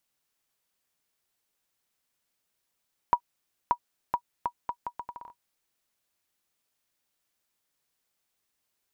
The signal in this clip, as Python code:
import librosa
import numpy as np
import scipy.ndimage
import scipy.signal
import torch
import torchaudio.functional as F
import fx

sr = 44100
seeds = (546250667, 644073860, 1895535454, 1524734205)

y = fx.bouncing_ball(sr, first_gap_s=0.58, ratio=0.74, hz=963.0, decay_ms=73.0, level_db=-10.0)